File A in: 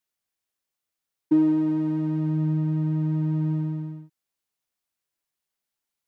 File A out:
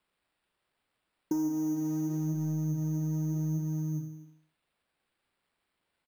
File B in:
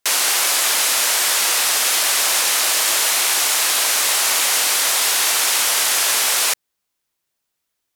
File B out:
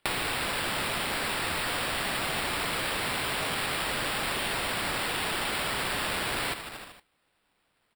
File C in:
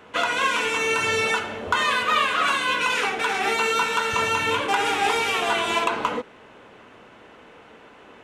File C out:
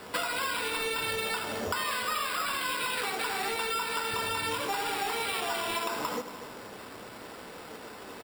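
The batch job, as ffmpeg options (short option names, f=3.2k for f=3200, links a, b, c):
-af "acontrast=73,aecho=1:1:77|154|231|308|385|462:0.178|0.105|0.0619|0.0365|0.0215|0.0127,asoftclip=type=tanh:threshold=-6.5dB,flanger=delay=5.1:depth=5.5:regen=81:speed=0.8:shape=sinusoidal,acrusher=samples=7:mix=1:aa=0.000001,acompressor=threshold=-31dB:ratio=6,volume=1dB"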